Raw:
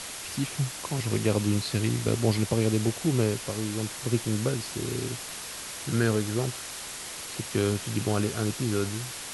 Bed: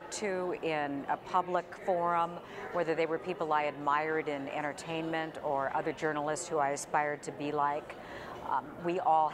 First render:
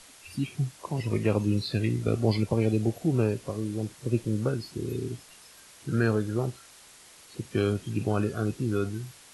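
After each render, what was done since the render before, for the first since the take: noise print and reduce 14 dB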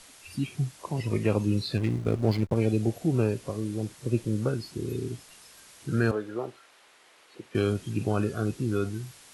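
1.77–2.56 backlash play -32.5 dBFS; 6.11–7.55 three-band isolator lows -18 dB, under 290 Hz, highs -13 dB, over 3500 Hz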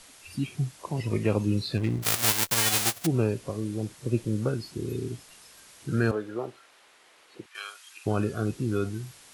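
2.02–3.05 spectral whitening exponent 0.1; 7.46–8.06 HPF 1000 Hz 24 dB/oct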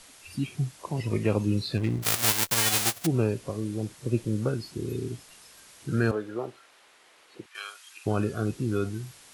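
nothing audible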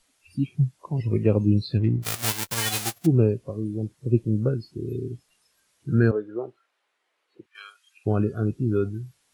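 spectral expander 1.5:1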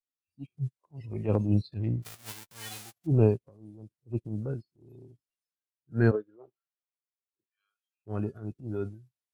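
transient shaper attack -8 dB, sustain +6 dB; upward expander 2.5:1, over -42 dBFS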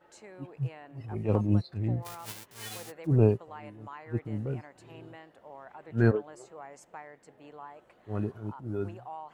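add bed -15.5 dB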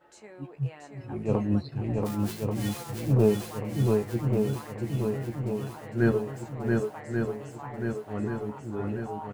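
doubler 14 ms -7 dB; on a send: swung echo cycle 1.136 s, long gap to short 1.5:1, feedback 55%, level -3 dB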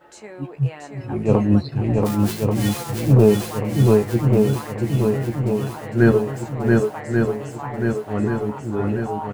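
gain +9.5 dB; limiter -3 dBFS, peak gain reduction 2.5 dB

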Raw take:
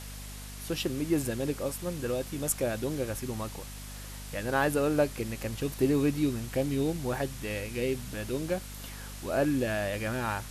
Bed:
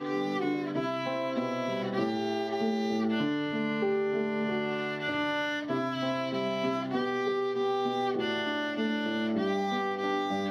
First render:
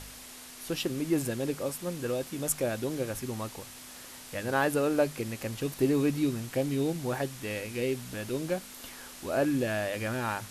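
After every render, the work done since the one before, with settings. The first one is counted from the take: de-hum 50 Hz, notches 4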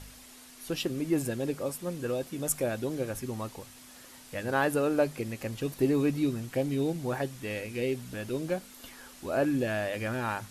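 denoiser 6 dB, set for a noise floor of -47 dBFS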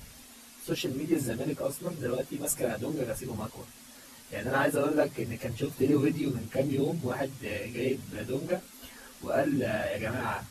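phase scrambler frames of 50 ms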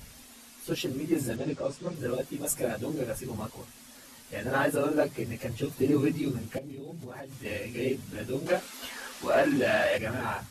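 1.36–1.95 LPF 7100 Hz 24 dB/oct; 6.58–7.45 compressor 16:1, threshold -37 dBFS; 8.46–9.98 overdrive pedal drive 16 dB, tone 4800 Hz, clips at -14.5 dBFS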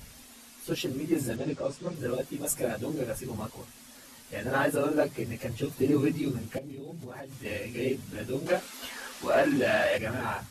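nothing audible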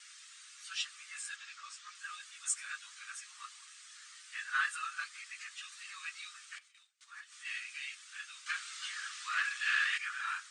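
Chebyshev band-pass 1200–8900 Hz, order 5; gate with hold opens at -49 dBFS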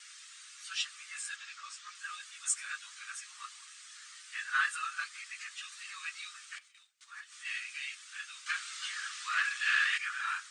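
gain +2.5 dB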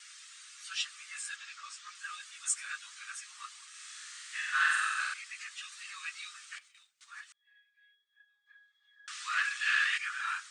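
3.69–5.14 flutter echo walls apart 8 m, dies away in 1.4 s; 7.32–9.08 octave resonator G#, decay 0.49 s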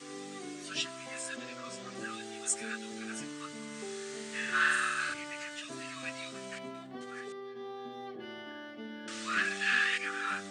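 add bed -14 dB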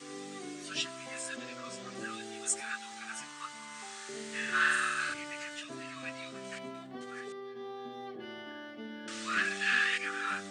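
2.6–4.09 resonant low shelf 630 Hz -10 dB, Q 3; 5.63–6.45 high shelf 4000 Hz -7 dB

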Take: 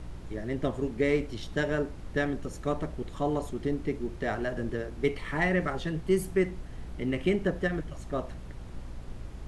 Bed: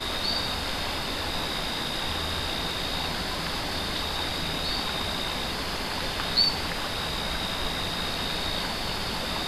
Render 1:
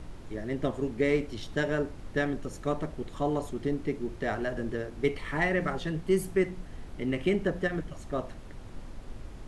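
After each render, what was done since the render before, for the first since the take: de-hum 60 Hz, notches 3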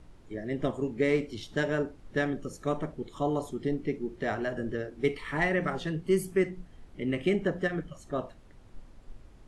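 noise print and reduce 10 dB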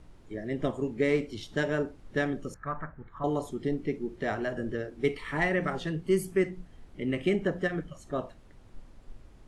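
2.54–3.24 EQ curve 110 Hz 0 dB, 390 Hz -16 dB, 1600 Hz +9 dB, 3100 Hz -20 dB, 7300 Hz -30 dB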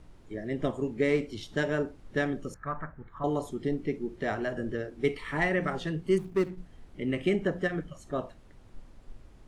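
6.18–6.58 median filter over 41 samples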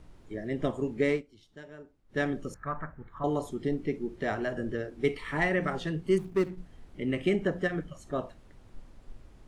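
1.1–2.21 dip -18.5 dB, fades 0.13 s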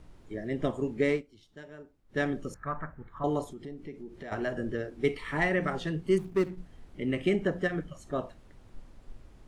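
3.44–4.32 compressor 2.5:1, threshold -43 dBFS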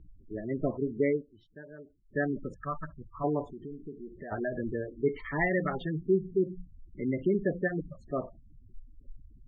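spectral gate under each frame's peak -15 dB strong; LPF 3500 Hz 12 dB/oct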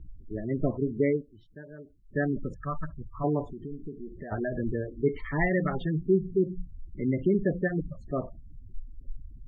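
low shelf 180 Hz +9.5 dB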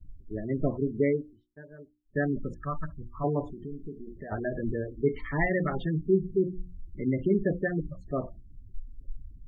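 expander -41 dBFS; notches 60/120/180/240/300/360 Hz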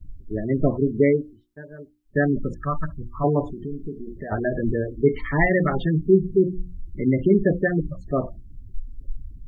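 gain +7.5 dB

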